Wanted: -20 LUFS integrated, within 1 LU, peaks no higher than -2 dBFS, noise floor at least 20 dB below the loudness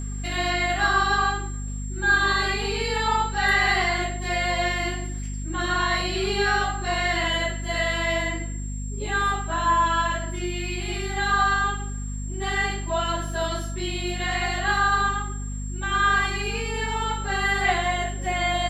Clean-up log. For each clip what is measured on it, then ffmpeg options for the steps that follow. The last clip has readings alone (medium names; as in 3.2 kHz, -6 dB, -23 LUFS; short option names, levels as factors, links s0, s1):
hum 50 Hz; highest harmonic 250 Hz; hum level -28 dBFS; steady tone 7.5 kHz; tone level -40 dBFS; loudness -24.0 LUFS; peak level -9.0 dBFS; loudness target -20.0 LUFS
-> -af "bandreject=f=50:t=h:w=4,bandreject=f=100:t=h:w=4,bandreject=f=150:t=h:w=4,bandreject=f=200:t=h:w=4,bandreject=f=250:t=h:w=4"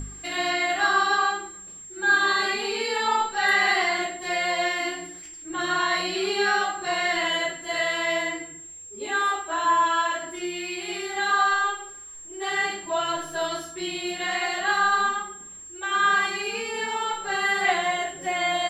hum not found; steady tone 7.5 kHz; tone level -40 dBFS
-> -af "bandreject=f=7500:w=30"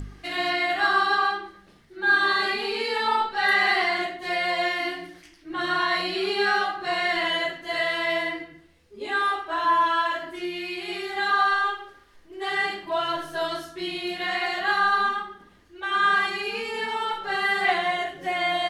steady tone not found; loudness -24.5 LUFS; peak level -10.0 dBFS; loudness target -20.0 LUFS
-> -af "volume=1.68"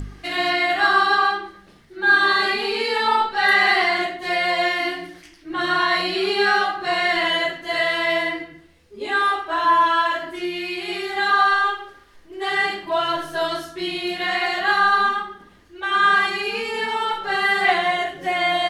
loudness -20.0 LUFS; peak level -5.5 dBFS; noise floor -50 dBFS